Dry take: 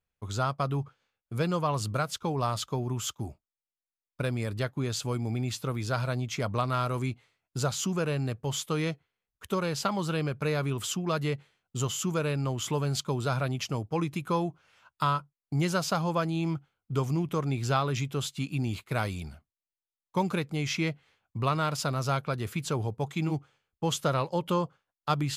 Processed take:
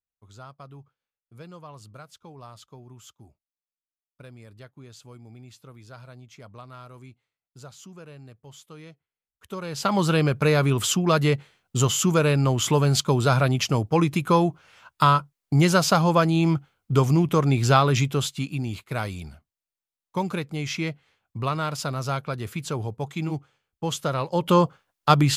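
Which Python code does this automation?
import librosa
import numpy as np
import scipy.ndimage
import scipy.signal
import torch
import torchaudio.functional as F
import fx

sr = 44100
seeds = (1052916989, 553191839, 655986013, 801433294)

y = fx.gain(x, sr, db=fx.line((8.89, -15.0), (9.68, -3.0), (9.96, 9.0), (18.03, 9.0), (18.63, 1.0), (24.17, 1.0), (24.59, 10.5)))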